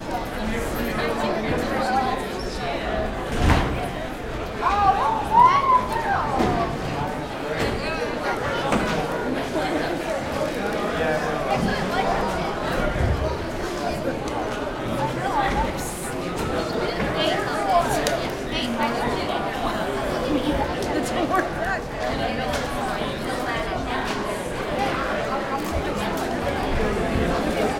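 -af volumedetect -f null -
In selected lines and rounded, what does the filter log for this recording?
mean_volume: -23.5 dB
max_volume: -3.2 dB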